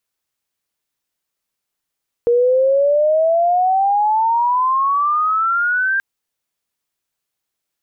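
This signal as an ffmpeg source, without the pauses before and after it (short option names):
-f lavfi -i "aevalsrc='pow(10,(-10.5-4*t/3.73)/20)*sin(2*PI*470*3.73/log(1600/470)*(exp(log(1600/470)*t/3.73)-1))':d=3.73:s=44100"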